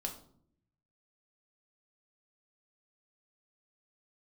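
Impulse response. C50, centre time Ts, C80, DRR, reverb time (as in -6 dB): 10.0 dB, 16 ms, 13.5 dB, 1.0 dB, 0.60 s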